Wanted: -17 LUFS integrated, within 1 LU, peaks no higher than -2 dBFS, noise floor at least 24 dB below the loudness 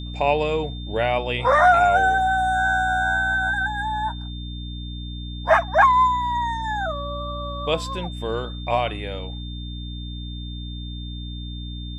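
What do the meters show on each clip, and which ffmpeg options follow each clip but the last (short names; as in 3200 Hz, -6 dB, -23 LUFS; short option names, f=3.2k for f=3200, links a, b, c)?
hum 60 Hz; harmonics up to 300 Hz; hum level -30 dBFS; steady tone 3600 Hz; tone level -39 dBFS; loudness -21.0 LUFS; peak -4.5 dBFS; loudness target -17.0 LUFS
-> -af "bandreject=f=60:t=h:w=4,bandreject=f=120:t=h:w=4,bandreject=f=180:t=h:w=4,bandreject=f=240:t=h:w=4,bandreject=f=300:t=h:w=4"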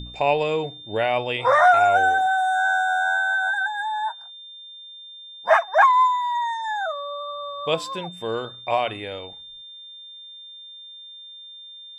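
hum none; steady tone 3600 Hz; tone level -39 dBFS
-> -af "bandreject=f=3.6k:w=30"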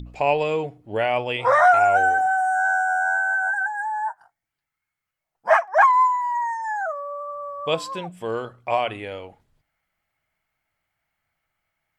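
steady tone none; loudness -21.0 LUFS; peak -4.5 dBFS; loudness target -17.0 LUFS
-> -af "volume=4dB,alimiter=limit=-2dB:level=0:latency=1"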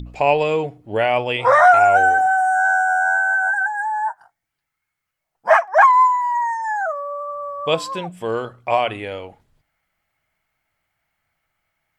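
loudness -17.0 LUFS; peak -2.0 dBFS; noise floor -80 dBFS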